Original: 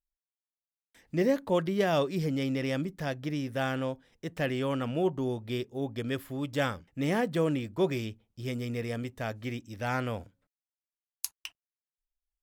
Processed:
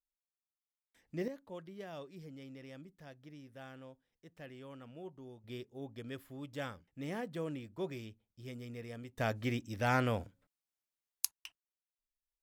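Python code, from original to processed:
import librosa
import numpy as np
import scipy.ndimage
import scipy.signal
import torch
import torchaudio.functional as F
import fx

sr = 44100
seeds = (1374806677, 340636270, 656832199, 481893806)

y = fx.gain(x, sr, db=fx.steps((0.0, -10.5), (1.28, -20.0), (5.44, -12.0), (9.18, 0.5), (11.25, -8.5)))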